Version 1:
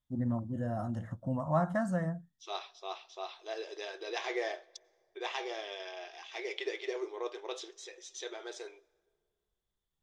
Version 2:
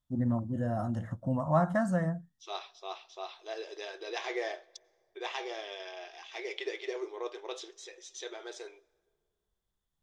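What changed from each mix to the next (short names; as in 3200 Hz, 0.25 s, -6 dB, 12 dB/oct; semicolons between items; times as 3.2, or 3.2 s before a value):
first voice +3.0 dB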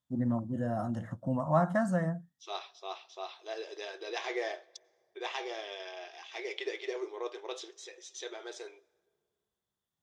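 master: add HPF 120 Hz 12 dB/oct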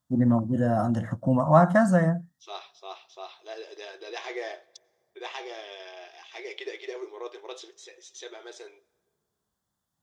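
first voice +9.0 dB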